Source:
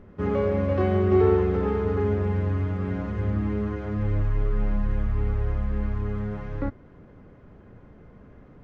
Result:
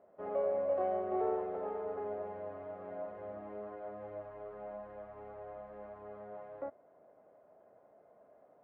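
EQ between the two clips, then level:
resonant band-pass 650 Hz, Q 6.7
high-frequency loss of the air 140 metres
spectral tilt +2.5 dB per octave
+5.5 dB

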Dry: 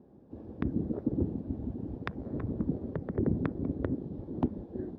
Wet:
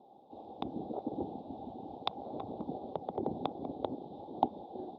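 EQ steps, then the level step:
pair of resonant band-passes 1,700 Hz, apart 2.2 octaves
+16.5 dB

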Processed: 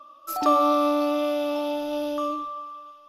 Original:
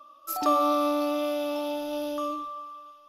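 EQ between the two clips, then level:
high-shelf EQ 5,900 Hz −6.5 dB
+3.5 dB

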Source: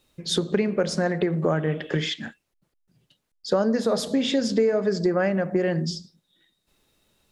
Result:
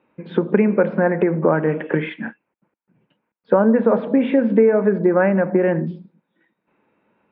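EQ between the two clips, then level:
high-frequency loss of the air 490 metres
loudspeaker in its box 170–2,700 Hz, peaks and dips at 210 Hz +6 dB, 310 Hz +4 dB, 500 Hz +5 dB, 940 Hz +10 dB, 1,500 Hz +6 dB, 2,400 Hz +8 dB
+4.5 dB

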